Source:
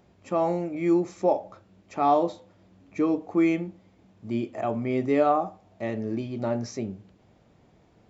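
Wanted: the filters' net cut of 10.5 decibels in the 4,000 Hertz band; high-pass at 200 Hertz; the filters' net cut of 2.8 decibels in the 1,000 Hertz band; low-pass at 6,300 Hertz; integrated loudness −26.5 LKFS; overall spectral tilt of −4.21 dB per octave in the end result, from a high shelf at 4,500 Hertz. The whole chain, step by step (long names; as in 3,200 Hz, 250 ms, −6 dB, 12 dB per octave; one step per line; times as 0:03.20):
high-pass filter 200 Hz
low-pass filter 6,300 Hz
parametric band 1,000 Hz −3.5 dB
parametric band 4,000 Hz −8.5 dB
high-shelf EQ 4,500 Hz −9 dB
level +2 dB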